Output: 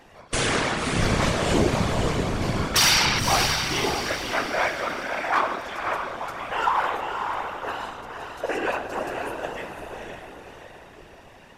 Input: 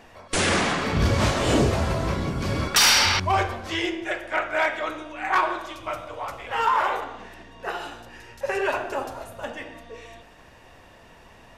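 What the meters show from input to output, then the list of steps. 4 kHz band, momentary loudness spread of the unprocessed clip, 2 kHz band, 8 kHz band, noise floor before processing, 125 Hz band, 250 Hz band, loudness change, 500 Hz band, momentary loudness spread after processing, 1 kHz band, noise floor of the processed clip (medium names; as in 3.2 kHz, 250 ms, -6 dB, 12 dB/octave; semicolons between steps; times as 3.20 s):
0.0 dB, 17 LU, 0.0 dB, 0.0 dB, -50 dBFS, -1.0 dB, 0.0 dB, -0.5 dB, 0.0 dB, 16 LU, 0.0 dB, -48 dBFS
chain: echo that smears into a reverb 544 ms, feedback 44%, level -5 dB; whisper effect; trim -1.5 dB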